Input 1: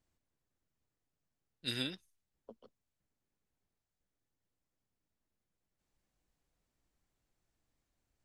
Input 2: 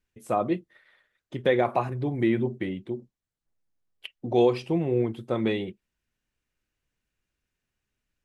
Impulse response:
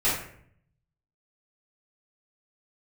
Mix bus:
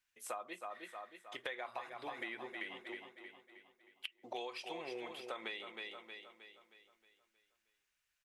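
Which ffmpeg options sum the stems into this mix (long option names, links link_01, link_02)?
-filter_complex "[0:a]volume=-18.5dB,asplit=2[link_01][link_02];[link_02]volume=-6.5dB[link_03];[1:a]highpass=1100,volume=2dB,asplit=2[link_04][link_05];[link_05]volume=-11dB[link_06];[link_03][link_06]amix=inputs=2:normalize=0,aecho=0:1:314|628|942|1256|1570|1884|2198:1|0.47|0.221|0.104|0.0488|0.0229|0.0108[link_07];[link_01][link_04][link_07]amix=inputs=3:normalize=0,acompressor=threshold=-40dB:ratio=10"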